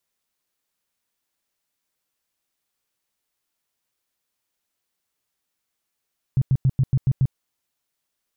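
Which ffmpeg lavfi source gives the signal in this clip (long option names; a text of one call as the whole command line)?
ffmpeg -f lavfi -i "aevalsrc='0.2*sin(2*PI*132*mod(t,0.14))*lt(mod(t,0.14),6/132)':duration=0.98:sample_rate=44100" out.wav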